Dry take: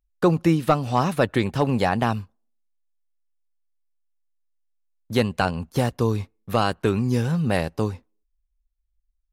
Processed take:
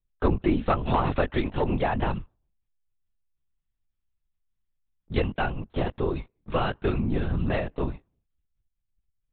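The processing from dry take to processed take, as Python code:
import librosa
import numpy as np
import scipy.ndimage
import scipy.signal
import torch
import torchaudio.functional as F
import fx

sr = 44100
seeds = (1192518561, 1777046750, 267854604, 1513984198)

p1 = fx.highpass(x, sr, hz=120.0, slope=12, at=(5.77, 6.35), fade=0.02)
p2 = 10.0 ** (-18.0 / 20.0) * np.tanh(p1 / 10.0 ** (-18.0 / 20.0))
p3 = p1 + (p2 * librosa.db_to_amplitude(-5.0))
p4 = fx.lpc_vocoder(p3, sr, seeds[0], excitation='whisper', order=10)
p5 = fx.band_squash(p4, sr, depth_pct=100, at=(0.87, 1.27))
y = p5 * librosa.db_to_amplitude(-6.5)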